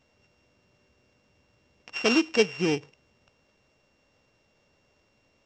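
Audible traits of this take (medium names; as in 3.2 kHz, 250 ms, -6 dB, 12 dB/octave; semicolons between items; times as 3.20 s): a buzz of ramps at a fixed pitch in blocks of 16 samples; µ-law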